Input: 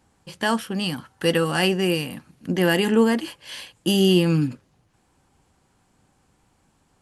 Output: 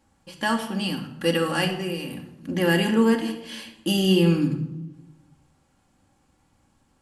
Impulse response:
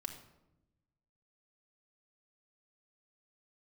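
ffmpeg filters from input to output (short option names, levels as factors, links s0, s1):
-filter_complex "[0:a]asettb=1/sr,asplit=3[s0][s1][s2];[s0]atrim=end=1.644[s3];[s1]atrim=start=1.64:end=2.52,asetpts=PTS-STARTPTS,afade=t=in:d=0.004:c=qsin,afade=t=out:st=0.876:d=0.004:c=qsin,acompressor=threshold=0.0631:ratio=6[s4];[s2]atrim=start=2.516[s5];[s3][s4]acrossfade=d=0.004:c1=hsin:c2=qsin[s6];[s6][s5]acrossfade=d=0.004:c1=qsin:c2=hsin[s7];[1:a]atrim=start_sample=2205[s8];[s7][s8]afir=irnorm=-1:irlink=0"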